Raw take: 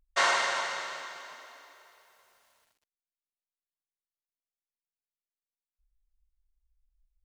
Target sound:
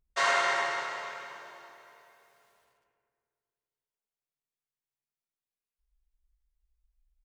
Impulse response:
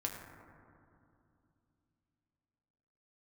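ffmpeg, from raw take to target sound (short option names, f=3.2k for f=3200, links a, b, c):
-filter_complex "[0:a]asplit=2[a][b];[b]adelay=101,lowpass=f=2.2k:p=1,volume=-5.5dB,asplit=2[c][d];[d]adelay=101,lowpass=f=2.2k:p=1,volume=0.55,asplit=2[e][f];[f]adelay=101,lowpass=f=2.2k:p=1,volume=0.55,asplit=2[g][h];[h]adelay=101,lowpass=f=2.2k:p=1,volume=0.55,asplit=2[i][j];[j]adelay=101,lowpass=f=2.2k:p=1,volume=0.55,asplit=2[k][l];[l]adelay=101,lowpass=f=2.2k:p=1,volume=0.55,asplit=2[m][n];[n]adelay=101,lowpass=f=2.2k:p=1,volume=0.55[o];[a][c][e][g][i][k][m][o]amix=inputs=8:normalize=0[p];[1:a]atrim=start_sample=2205,asetrate=61740,aresample=44100[q];[p][q]afir=irnorm=-1:irlink=0"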